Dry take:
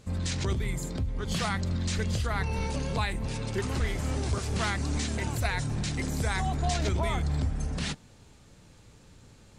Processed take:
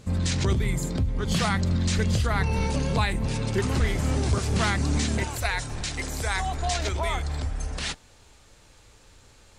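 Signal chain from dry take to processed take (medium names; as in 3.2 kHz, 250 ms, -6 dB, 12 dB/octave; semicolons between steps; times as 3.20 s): peaking EQ 170 Hz +2 dB 1.9 oct, from 5.24 s -13 dB; trim +4.5 dB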